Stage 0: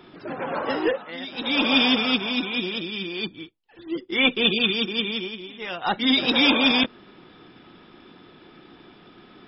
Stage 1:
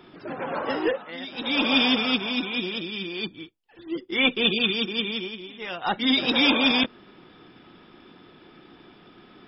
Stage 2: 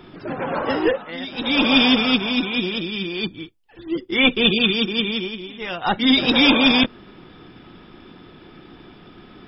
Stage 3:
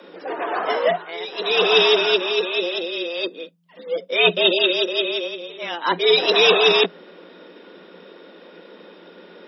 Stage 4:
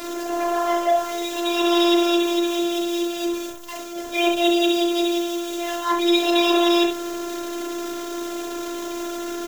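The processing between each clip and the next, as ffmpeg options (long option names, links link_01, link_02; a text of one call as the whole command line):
ffmpeg -i in.wav -af "bandreject=frequency=4000:width=19,volume=-1.5dB" out.wav
ffmpeg -i in.wav -af "lowshelf=frequency=120:gain=12,volume=4.5dB" out.wav
ffmpeg -i in.wav -af "afreqshift=170" out.wav
ffmpeg -i in.wav -af "aeval=exprs='val(0)+0.5*0.0841*sgn(val(0))':channel_layout=same,afftfilt=real='hypot(re,im)*cos(PI*b)':imag='0':win_size=512:overlap=0.75,aecho=1:1:34.99|67.06:0.562|0.447,volume=-3dB" out.wav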